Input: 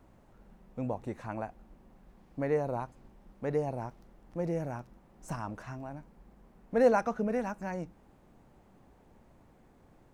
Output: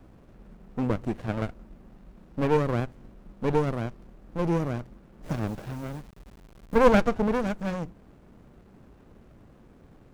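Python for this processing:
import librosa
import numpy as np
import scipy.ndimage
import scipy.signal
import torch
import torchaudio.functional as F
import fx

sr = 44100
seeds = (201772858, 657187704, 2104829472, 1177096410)

y = fx.delta_hold(x, sr, step_db=-53.0, at=(5.29, 6.79))
y = fx.running_max(y, sr, window=33)
y = y * librosa.db_to_amplitude(8.5)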